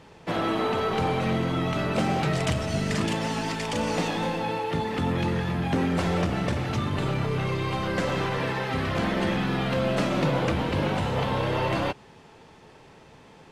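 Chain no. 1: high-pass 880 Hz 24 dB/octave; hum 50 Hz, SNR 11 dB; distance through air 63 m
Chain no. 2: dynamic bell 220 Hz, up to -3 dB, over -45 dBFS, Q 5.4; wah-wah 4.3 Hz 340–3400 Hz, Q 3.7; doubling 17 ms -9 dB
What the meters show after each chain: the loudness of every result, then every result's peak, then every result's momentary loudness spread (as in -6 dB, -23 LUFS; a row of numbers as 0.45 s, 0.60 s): -33.0 LUFS, -37.0 LUFS; -18.0 dBFS, -20.5 dBFS; 6 LU, 5 LU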